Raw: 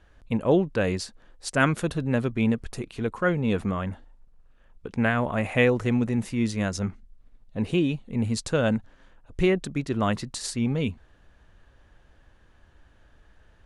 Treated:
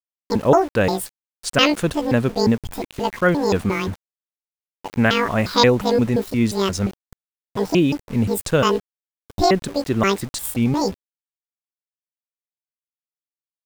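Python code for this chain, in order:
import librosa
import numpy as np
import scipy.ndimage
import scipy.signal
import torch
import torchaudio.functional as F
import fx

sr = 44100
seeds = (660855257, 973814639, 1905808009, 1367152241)

y = fx.pitch_trill(x, sr, semitones=11.5, every_ms=176)
y = np.where(np.abs(y) >= 10.0 ** (-40.5 / 20.0), y, 0.0)
y = F.gain(torch.from_numpy(y), 6.5).numpy()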